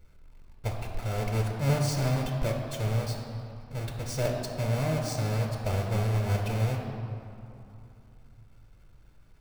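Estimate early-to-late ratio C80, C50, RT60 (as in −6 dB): 4.5 dB, 3.5 dB, 2.8 s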